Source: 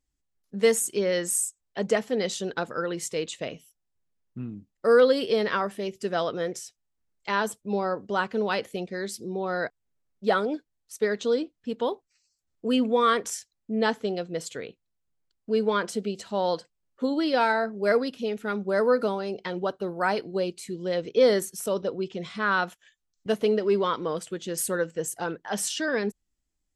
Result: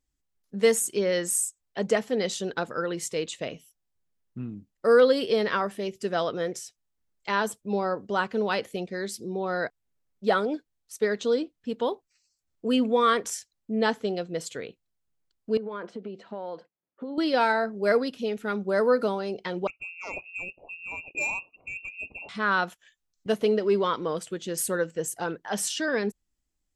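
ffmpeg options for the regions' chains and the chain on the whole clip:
-filter_complex "[0:a]asettb=1/sr,asplit=3[a][b][c];[a]atrim=end=15.574[d];[b]atrim=start=15.57:end=17.18,asetpts=PTS-STARTPTS,afade=t=in:d=0.004:c=qsin,afade=t=out:st=1.606:d=0.004:c=qsin,highshelf=f=2.3k:g=-12,acompressor=threshold=-30dB:ratio=12:attack=3.2:release=140:knee=1:detection=peak,highpass=200,lowpass=3.3k[e];[c]atrim=start=17.176[f];[d][e]acrossfade=d=0.004:c1=hsin:c2=qsin[g];[g][f]acrossfade=d=0.004:c1=qsin:c2=hsin,asettb=1/sr,asplit=3[h][i][j];[h]atrim=end=19.674[k];[i]atrim=start=19.67:end=22.29,asetpts=PTS-STARTPTS,afade=t=in:d=0.004:c=qsin,afade=t=out:st=2.616:d=0.004:c=qsin,lowpass=f=2.5k:t=q:w=0.5098,lowpass=f=2.5k:t=q:w=0.6013,lowpass=f=2.5k:t=q:w=0.9,lowpass=f=2.5k:t=q:w=2.563,afreqshift=-2900,acontrast=60,asuperstop=centerf=1700:order=4:qfactor=0.53[l];[j]atrim=start=22.286[m];[k][l]acrossfade=d=0.004:c1=hsin:c2=qsin[n];[n][m]acrossfade=d=0.004:c1=qsin:c2=hsin"

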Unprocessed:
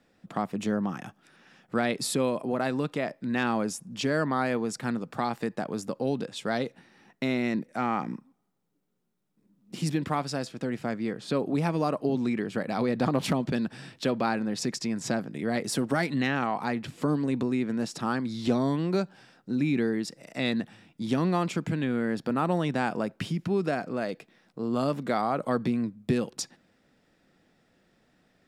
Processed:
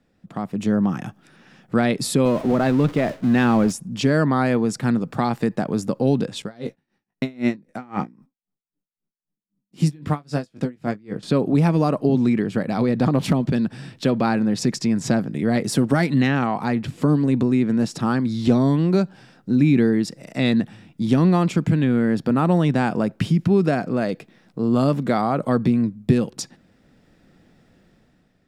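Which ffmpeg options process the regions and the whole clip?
-filter_complex "[0:a]asettb=1/sr,asplit=3[a][b][c];[a]atrim=end=2.254[d];[b]atrim=start=2.25:end=3.72,asetpts=PTS-STARTPTS,afade=t=in:d=0.004:c=qsin,afade=t=out:st=1.466:d=0.004:c=qsin,aeval=exprs='val(0)+0.5*0.02*sgn(val(0))':c=same,agate=range=-33dB:threshold=-32dB:ratio=3:release=100:detection=peak,highshelf=f=7.3k:g=-10.5[e];[c]atrim=start=3.716[f];[d][e]acrossfade=d=0.004:c1=hsin:c2=qsin[g];[g][f]acrossfade=d=0.004:c1=qsin:c2=hsin,asettb=1/sr,asplit=3[h][i][j];[h]atrim=end=6.424[k];[i]atrim=start=6.42:end=11.23,asetpts=PTS-STARTPTS,afade=t=in:d=0.004:c=qsin,afade=t=out:st=4.806:d=0.004:c=qsin,agate=range=-19dB:threshold=-56dB:ratio=16:release=100:detection=peak,asplit=2[l][m];[m]adelay=20,volume=-8.5dB[n];[l][n]amix=inputs=2:normalize=0,atrim=end_sample=212121,aeval=exprs='val(0)*pow(10,-29*(0.5-0.5*cos(2*PI*3.8*n/s))/20)':c=same[o];[j]atrim=start=11.226[p];[k][o]acrossfade=d=0.004:c1=hsin:c2=qsin[q];[q][p]acrossfade=d=0.004:c1=qsin:c2=hsin,lowshelf=f=250:g=10.5,dynaudnorm=f=140:g=9:m=9.5dB,volume=-3.5dB"

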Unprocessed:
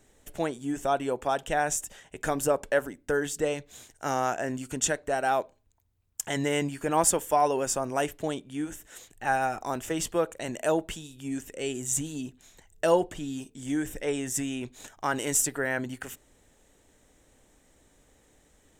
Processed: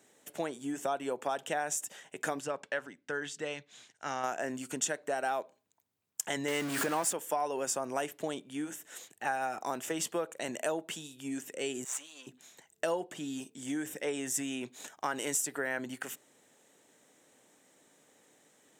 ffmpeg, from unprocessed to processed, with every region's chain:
-filter_complex "[0:a]asettb=1/sr,asplit=3[a][b][c];[a]atrim=end=2.404[d];[b]atrim=start=2.4:end=4.24,asetpts=PTS-STARTPTS,afade=t=in:d=0.004:c=qsin,afade=t=out:st=1.836:d=0.004:c=qsin,lowpass=4.6k,equalizer=f=450:t=o:w=2.7:g=-9[e];[c]atrim=start=4.236[f];[d][e]acrossfade=d=0.004:c1=hsin:c2=qsin[g];[g][f]acrossfade=d=0.004:c1=qsin:c2=hsin,asettb=1/sr,asplit=3[h][i][j];[h]atrim=end=6.484[k];[i]atrim=start=6.48:end=7.13,asetpts=PTS-STARTPTS,afade=t=in:d=0.004:c=qsin,afade=t=out:st=0.646:d=0.004:c=qsin,aeval=exprs='val(0)+0.5*0.0447*sgn(val(0))':c=same,equalizer=f=1.6k:t=o:w=0.64:g=4,acompressor=mode=upward:threshold=-23dB:ratio=2.5:attack=3.2:release=140:knee=2.83:detection=peak[l];[j]atrim=start=7.126[m];[k][l]acrossfade=d=0.004:c1=hsin:c2=qsin[n];[n][m]acrossfade=d=0.004:c1=qsin:c2=hsin,asettb=1/sr,asplit=3[o][p][q];[o]atrim=end=11.844[r];[p]atrim=start=11.84:end=12.27,asetpts=PTS-STARTPTS,afade=t=in:d=0.004:c=qsin,afade=t=out:st=0.426:d=0.004:c=qsin,aeval=exprs='if(lt(val(0),0),0.447*val(0),val(0))':c=same,highpass=890,highshelf=f=6.8k:g=-10.5[s];[q]atrim=start=12.266[t];[r][s]acrossfade=d=0.004:c1=hsin:c2=qsin[u];[u][t]acrossfade=d=0.004:c1=qsin:c2=hsin,acompressor=threshold=-29dB:ratio=4,highpass=f=140:w=0.5412,highpass=f=140:w=1.3066,lowshelf=f=250:g=-7"

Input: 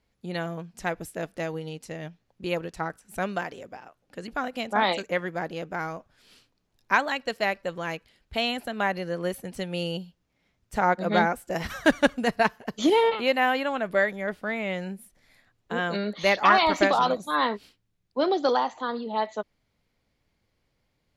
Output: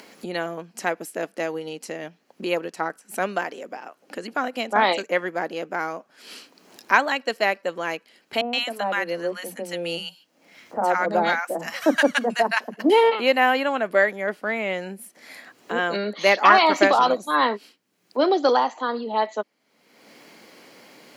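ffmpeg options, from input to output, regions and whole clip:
-filter_complex "[0:a]asettb=1/sr,asplit=3[a][b][c];[a]atrim=end=8.414[d];[b]atrim=start=8.41:end=12.9,asetpts=PTS-STARTPTS,afade=t=in:d=0.004:c=qsin,afade=t=out:st=4.486:d=0.004:c=qsin,bandreject=f=400:w=6.9,acrossover=split=210|1000[e][f][g];[e]adelay=30[h];[g]adelay=120[i];[h][f][i]amix=inputs=3:normalize=0,atrim=end_sample=198009[j];[c]atrim=start=12.896[k];[d][j]acrossfade=d=0.004:c1=hsin:c2=qsin[l];[l][k]acrossfade=d=0.004:c1=qsin:c2=hsin,highpass=f=230:w=0.5412,highpass=f=230:w=1.3066,bandreject=f=3.6k:w=12,acompressor=mode=upward:threshold=-33dB:ratio=2.5,volume=4.5dB"

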